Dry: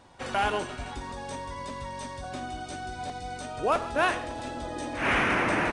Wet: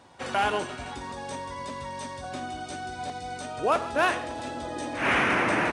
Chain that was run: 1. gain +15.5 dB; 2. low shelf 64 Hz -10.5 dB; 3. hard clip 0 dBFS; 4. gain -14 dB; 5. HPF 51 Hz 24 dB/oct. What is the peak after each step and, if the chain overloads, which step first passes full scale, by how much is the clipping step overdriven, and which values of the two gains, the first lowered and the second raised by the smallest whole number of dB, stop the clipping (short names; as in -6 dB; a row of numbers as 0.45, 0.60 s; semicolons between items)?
+2.5, +3.0, 0.0, -14.0, -12.5 dBFS; step 1, 3.0 dB; step 1 +12.5 dB, step 4 -11 dB